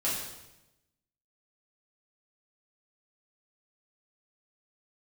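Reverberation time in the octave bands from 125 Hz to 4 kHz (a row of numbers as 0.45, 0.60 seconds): 1.2, 1.1, 1.0, 0.90, 0.90, 0.85 seconds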